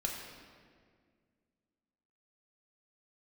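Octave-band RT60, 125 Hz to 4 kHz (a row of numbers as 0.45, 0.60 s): 2.4, 2.6, 2.1, 1.7, 1.6, 1.3 s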